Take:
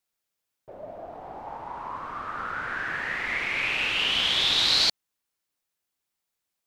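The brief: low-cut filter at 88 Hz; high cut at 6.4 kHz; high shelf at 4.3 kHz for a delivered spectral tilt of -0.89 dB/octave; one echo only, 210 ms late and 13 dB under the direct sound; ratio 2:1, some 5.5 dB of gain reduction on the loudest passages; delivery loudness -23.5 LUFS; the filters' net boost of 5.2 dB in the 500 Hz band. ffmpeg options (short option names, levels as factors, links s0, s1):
-af "highpass=88,lowpass=6400,equalizer=f=500:t=o:g=6.5,highshelf=f=4300:g=6.5,acompressor=threshold=0.0501:ratio=2,aecho=1:1:210:0.224,volume=1.5"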